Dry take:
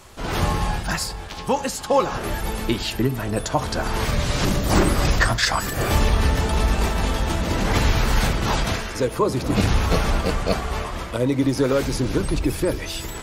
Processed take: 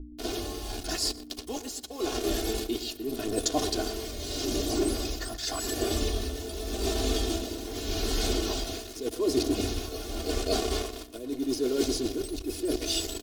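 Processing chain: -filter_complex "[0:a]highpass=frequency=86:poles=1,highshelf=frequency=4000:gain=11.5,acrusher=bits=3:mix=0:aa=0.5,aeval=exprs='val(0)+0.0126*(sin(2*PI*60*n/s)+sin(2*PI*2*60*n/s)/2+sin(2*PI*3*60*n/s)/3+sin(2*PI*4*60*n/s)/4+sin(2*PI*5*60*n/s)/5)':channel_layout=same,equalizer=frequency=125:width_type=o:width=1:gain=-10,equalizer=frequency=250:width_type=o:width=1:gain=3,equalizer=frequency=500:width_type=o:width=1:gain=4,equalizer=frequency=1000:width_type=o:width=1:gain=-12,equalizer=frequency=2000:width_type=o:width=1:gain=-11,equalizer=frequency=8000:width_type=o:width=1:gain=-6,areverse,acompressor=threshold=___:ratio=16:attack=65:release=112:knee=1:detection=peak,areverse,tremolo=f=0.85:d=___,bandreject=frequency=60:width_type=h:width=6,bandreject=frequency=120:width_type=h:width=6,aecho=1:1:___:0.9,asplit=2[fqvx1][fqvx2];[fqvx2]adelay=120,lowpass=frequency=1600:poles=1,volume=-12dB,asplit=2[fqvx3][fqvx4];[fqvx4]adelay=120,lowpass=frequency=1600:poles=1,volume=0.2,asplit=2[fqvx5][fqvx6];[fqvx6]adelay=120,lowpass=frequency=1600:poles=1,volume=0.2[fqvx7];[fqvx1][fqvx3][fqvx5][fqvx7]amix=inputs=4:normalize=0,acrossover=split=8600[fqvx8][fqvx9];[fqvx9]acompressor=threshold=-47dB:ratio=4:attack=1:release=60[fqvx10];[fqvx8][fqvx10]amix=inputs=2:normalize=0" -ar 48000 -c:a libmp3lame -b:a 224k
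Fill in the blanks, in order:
-30dB, 0.67, 2.8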